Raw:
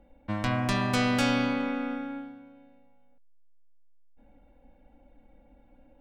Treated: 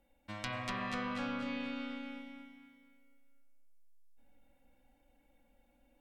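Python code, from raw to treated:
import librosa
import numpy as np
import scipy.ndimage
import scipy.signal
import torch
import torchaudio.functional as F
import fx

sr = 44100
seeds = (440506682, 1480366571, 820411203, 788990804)

y = librosa.effects.preemphasis(x, coef=0.9, zi=[0.0])
y = fx.env_lowpass_down(y, sr, base_hz=1300.0, full_db=-36.5)
y = fx.echo_feedback(y, sr, ms=238, feedback_pct=38, wet_db=-4.5)
y = fx.rev_spring(y, sr, rt60_s=1.3, pass_ms=(46,), chirp_ms=20, drr_db=7.5)
y = y * 10.0 ** (4.5 / 20.0)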